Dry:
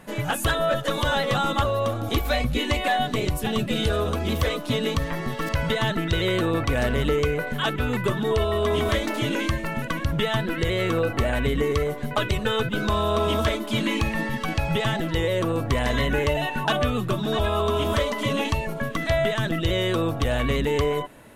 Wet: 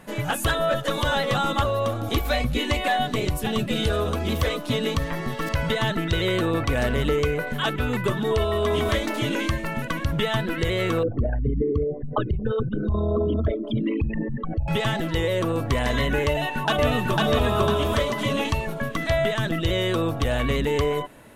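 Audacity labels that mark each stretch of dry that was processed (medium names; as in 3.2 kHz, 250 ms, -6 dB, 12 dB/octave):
11.030000	14.680000	resonances exaggerated exponent 3
16.280000	17.240000	echo throw 500 ms, feedback 35%, level -1 dB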